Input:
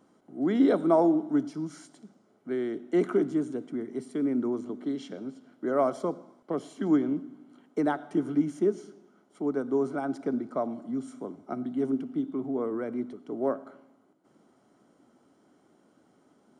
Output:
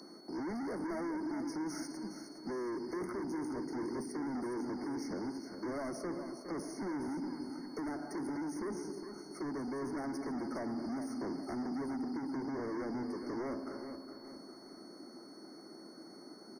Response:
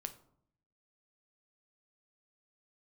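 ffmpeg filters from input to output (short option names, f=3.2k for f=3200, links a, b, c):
-filter_complex "[0:a]highpass=f=160:w=0.5412,highpass=f=160:w=1.3066,aemphasis=mode=production:type=cd,aeval=exprs='val(0)+0.00251*sin(2*PI*4400*n/s)':c=same,acrossover=split=220|5800[a][b][c];[a]acompressor=threshold=-41dB:ratio=4[d];[b]acompressor=threshold=-40dB:ratio=4[e];[c]acompressor=threshold=-56dB:ratio=4[f];[d][e][f]amix=inputs=3:normalize=0,asplit=2[g][h];[h]aeval=exprs='0.0596*sin(PI/2*5.01*val(0)/0.0596)':c=same,volume=-12dB[i];[g][i]amix=inputs=2:normalize=0,equalizer=f=340:t=o:w=0.38:g=8.5,asoftclip=type=tanh:threshold=-35dB,asplit=2[j][k];[k]aecho=0:1:412|824|1236|1648|2060:0.355|0.153|0.0656|0.0282|0.0121[l];[j][l]amix=inputs=2:normalize=0,afftfilt=real='re*eq(mod(floor(b*sr/1024/2200),2),0)':imag='im*eq(mod(floor(b*sr/1024/2200),2),0)':win_size=1024:overlap=0.75,volume=-1.5dB"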